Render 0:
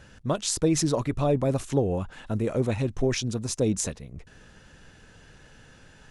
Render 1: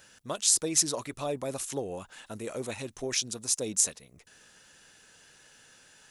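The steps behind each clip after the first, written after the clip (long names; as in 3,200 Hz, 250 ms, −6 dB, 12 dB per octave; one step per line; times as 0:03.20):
RIAA equalisation recording
level −5.5 dB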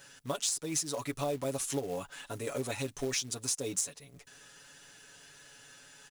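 comb filter 7.1 ms, depth 78%
downward compressor 12 to 1, threshold −29 dBFS, peak gain reduction 13.5 dB
floating-point word with a short mantissa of 2 bits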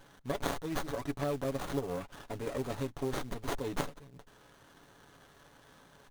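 windowed peak hold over 17 samples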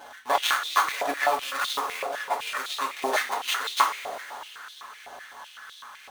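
mains hum 60 Hz, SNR 11 dB
coupled-rooms reverb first 0.26 s, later 4 s, from −18 dB, DRR −0.5 dB
high-pass on a step sequencer 7.9 Hz 690–3,600 Hz
level +9 dB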